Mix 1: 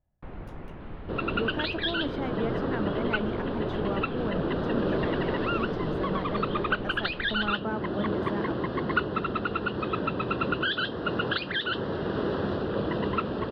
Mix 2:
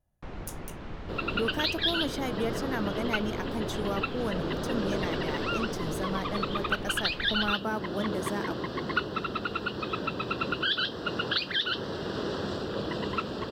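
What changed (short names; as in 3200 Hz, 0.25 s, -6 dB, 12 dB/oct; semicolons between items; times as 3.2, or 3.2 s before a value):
second sound -5.0 dB; master: remove air absorption 380 m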